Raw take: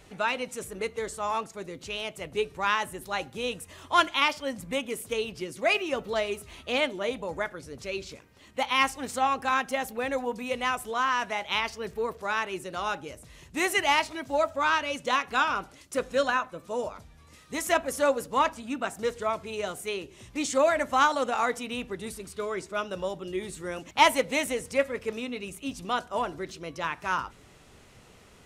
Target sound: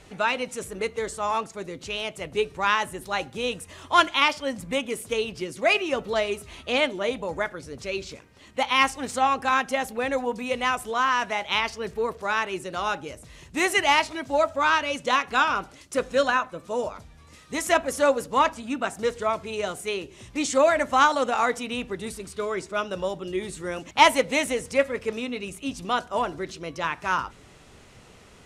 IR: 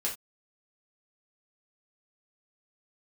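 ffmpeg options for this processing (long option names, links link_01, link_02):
-af "lowpass=11000,volume=3.5dB"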